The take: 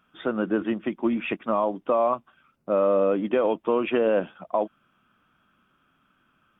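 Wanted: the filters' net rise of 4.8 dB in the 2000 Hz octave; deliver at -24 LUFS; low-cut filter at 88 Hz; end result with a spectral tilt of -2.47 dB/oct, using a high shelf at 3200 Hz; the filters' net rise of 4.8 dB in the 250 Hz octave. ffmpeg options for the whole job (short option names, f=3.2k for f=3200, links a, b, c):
-af "highpass=88,equalizer=f=250:t=o:g=6,equalizer=f=2k:t=o:g=3,highshelf=f=3.2k:g=9,volume=-1.5dB"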